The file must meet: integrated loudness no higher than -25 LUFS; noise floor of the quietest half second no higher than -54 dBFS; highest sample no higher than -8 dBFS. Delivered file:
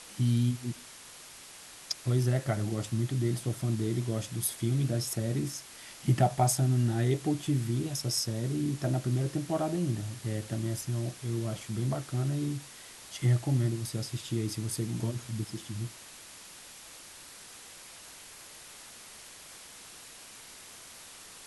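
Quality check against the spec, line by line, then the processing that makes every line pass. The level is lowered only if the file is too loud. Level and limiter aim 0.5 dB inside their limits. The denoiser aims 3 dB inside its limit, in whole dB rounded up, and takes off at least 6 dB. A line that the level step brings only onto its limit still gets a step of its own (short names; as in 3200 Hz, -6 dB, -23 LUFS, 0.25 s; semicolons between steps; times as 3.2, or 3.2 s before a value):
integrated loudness -31.0 LUFS: OK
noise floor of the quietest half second -49 dBFS: fail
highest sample -13.0 dBFS: OK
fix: denoiser 8 dB, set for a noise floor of -49 dBFS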